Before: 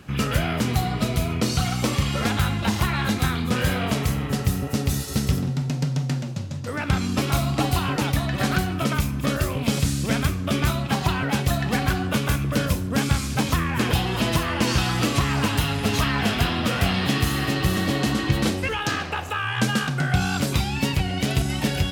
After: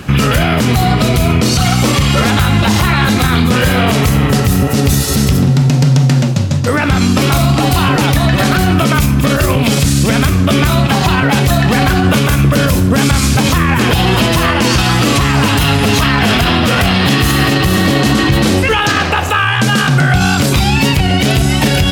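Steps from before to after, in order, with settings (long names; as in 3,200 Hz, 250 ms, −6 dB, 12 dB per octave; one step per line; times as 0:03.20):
boost into a limiter +19 dB
level −1.5 dB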